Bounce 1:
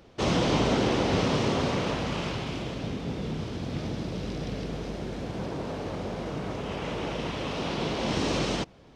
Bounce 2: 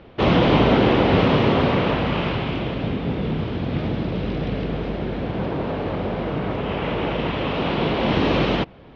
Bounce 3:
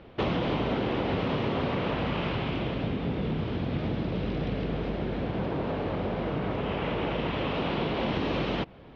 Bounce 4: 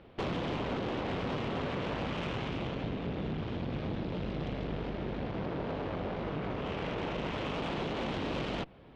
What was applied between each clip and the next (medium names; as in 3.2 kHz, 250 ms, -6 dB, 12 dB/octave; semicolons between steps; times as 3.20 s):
low-pass 3.4 kHz 24 dB/octave; trim +8.5 dB
compression 6:1, threshold -21 dBFS, peak gain reduction 9 dB; trim -4 dB
valve stage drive 28 dB, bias 0.75; trim -1 dB